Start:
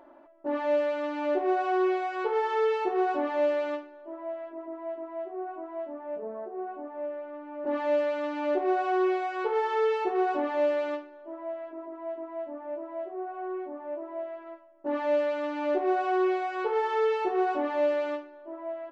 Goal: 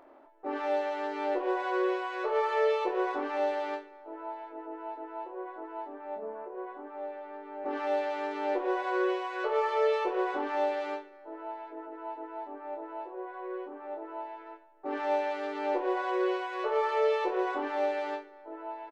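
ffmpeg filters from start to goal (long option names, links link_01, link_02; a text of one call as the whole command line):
ffmpeg -i in.wav -filter_complex "[0:a]asplit=3[link_01][link_02][link_03];[link_02]asetrate=58866,aresample=44100,atempo=0.749154,volume=-5dB[link_04];[link_03]asetrate=66075,aresample=44100,atempo=0.66742,volume=-13dB[link_05];[link_01][link_04][link_05]amix=inputs=3:normalize=0,asplit=2[link_06][link_07];[link_07]adelay=25,volume=-7dB[link_08];[link_06][link_08]amix=inputs=2:normalize=0,volume=-4.5dB" out.wav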